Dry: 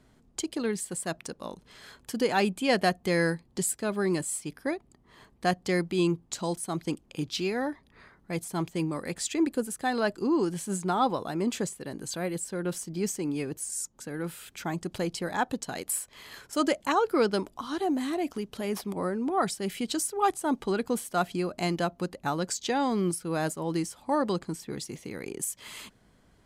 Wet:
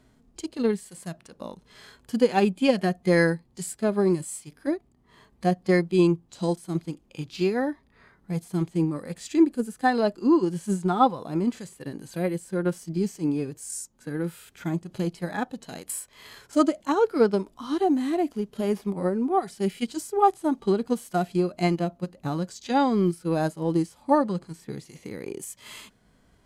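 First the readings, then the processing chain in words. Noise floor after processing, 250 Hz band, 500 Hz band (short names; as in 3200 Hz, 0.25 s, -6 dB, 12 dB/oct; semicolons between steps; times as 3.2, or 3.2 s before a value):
-62 dBFS, +5.0 dB, +4.5 dB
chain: harmonic-percussive split percussive -17 dB; transient shaper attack +4 dB, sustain -2 dB; gain +5 dB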